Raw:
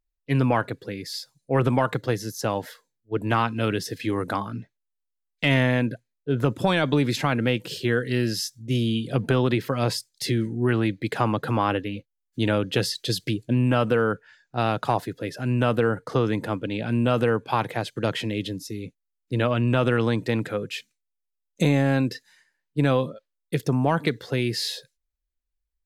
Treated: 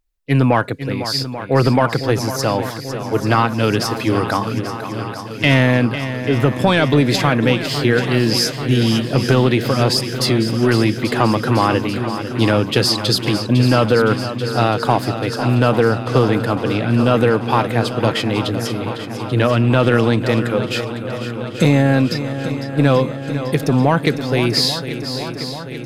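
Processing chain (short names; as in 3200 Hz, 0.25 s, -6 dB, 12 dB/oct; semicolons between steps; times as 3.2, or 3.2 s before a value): dynamic EQ 4800 Hz, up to +7 dB, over -51 dBFS, Q 7.3; in parallel at -4 dB: soft clip -17.5 dBFS, distortion -13 dB; on the sum: swung echo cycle 0.837 s, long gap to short 1.5:1, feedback 65%, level -11 dB; gain +4 dB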